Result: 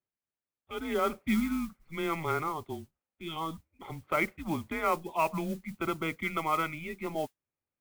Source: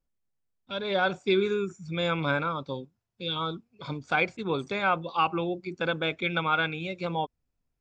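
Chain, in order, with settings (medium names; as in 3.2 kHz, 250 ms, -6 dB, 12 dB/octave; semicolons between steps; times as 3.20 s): mistuned SSB -160 Hz 260–3000 Hz; modulation noise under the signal 20 dB; 5.79–6.96 s: band-stop 1.7 kHz, Q 9.3; trim -3 dB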